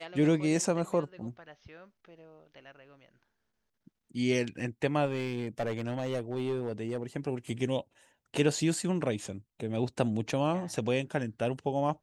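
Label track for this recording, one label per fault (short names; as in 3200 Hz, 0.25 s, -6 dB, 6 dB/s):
5.050000	7.030000	clipped -27 dBFS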